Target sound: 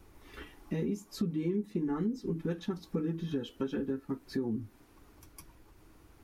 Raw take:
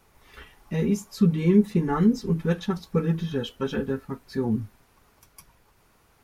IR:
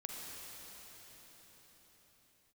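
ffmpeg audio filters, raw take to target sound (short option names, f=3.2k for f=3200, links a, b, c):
-filter_complex "[0:a]acrossover=split=110|1300[a][b][c];[a]acompressor=mode=upward:threshold=-46dB:ratio=2.5[d];[d][b][c]amix=inputs=3:normalize=0,equalizer=f=310:t=o:w=0.53:g=14.5,acompressor=threshold=-29dB:ratio=4,volume=-3dB"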